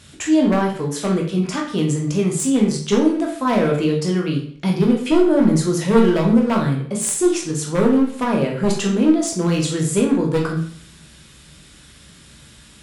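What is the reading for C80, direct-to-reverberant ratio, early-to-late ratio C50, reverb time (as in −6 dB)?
9.5 dB, −0.5 dB, 6.0 dB, 0.50 s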